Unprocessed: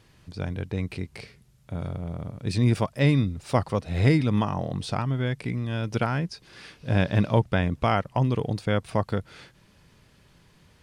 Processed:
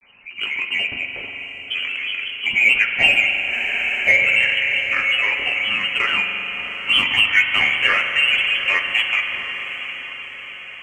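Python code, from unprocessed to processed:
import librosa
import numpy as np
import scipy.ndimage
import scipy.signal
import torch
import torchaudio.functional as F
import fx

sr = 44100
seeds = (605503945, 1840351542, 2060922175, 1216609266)

p1 = fx.freq_invert(x, sr, carrier_hz=2700)
p2 = fx.granulator(p1, sr, seeds[0], grain_ms=100.0, per_s=21.0, spray_ms=15.0, spread_st=3)
p3 = 10.0 ** (-23.0 / 20.0) * np.tanh(p2 / 10.0 ** (-23.0 / 20.0))
p4 = p2 + (p3 * 10.0 ** (-9.0 / 20.0))
p5 = fx.notch_comb(p4, sr, f0_hz=160.0)
p6 = fx.echo_diffused(p5, sr, ms=766, feedback_pct=56, wet_db=-12.0)
p7 = fx.rev_spring(p6, sr, rt60_s=3.7, pass_ms=(43,), chirp_ms=30, drr_db=4.5)
p8 = fx.spec_freeze(p7, sr, seeds[1], at_s=3.53, hold_s=0.55)
y = p8 * 10.0 ** (5.5 / 20.0)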